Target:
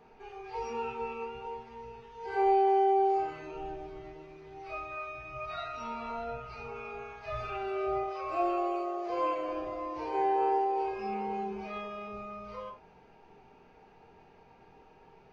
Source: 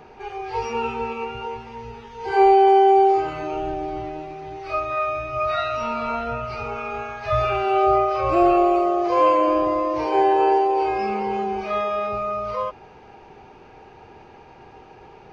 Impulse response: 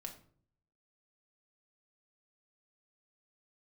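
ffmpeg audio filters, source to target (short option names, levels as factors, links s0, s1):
-filter_complex "[0:a]asettb=1/sr,asplit=3[s0][s1][s2];[s0]atrim=end=8.034[s3];[s1]atrim=start=8.03:end=9.1,asetpts=PTS-STARTPTS,afade=t=in:d=0.004:c=qsin,afade=t=out:st=1.066:d=0.004:c=qsin,bass=f=250:g=-12,treble=f=4000:g=1[s4];[s2]atrim=start=9.096[s5];[s3][s4]acrossfade=d=0.004:c1=hsin:c2=qsin[s6];[s6][s5]acrossfade=d=0.004:c1=qsin:c2=hsin[s7];[1:a]atrim=start_sample=2205,atrim=end_sample=4410[s8];[s7][s8]afir=irnorm=-1:irlink=0,volume=0.376"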